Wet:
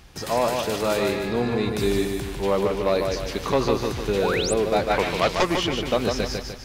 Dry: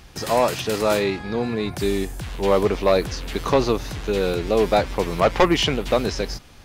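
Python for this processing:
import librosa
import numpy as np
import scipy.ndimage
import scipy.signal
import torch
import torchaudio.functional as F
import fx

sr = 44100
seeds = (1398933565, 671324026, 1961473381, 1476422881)

y = fx.rider(x, sr, range_db=4, speed_s=0.5)
y = fx.echo_feedback(y, sr, ms=149, feedback_pct=45, wet_db=-4.5)
y = fx.spec_paint(y, sr, seeds[0], shape='rise', start_s=4.18, length_s=0.36, low_hz=420.0, high_hz=10000.0, level_db=-25.0)
y = fx.peak_eq(y, sr, hz=fx.line((4.89, 1400.0), (5.55, 9100.0)), db=10.5, octaves=1.9, at=(4.89, 5.55), fade=0.02)
y = y * librosa.db_to_amplitude(-3.5)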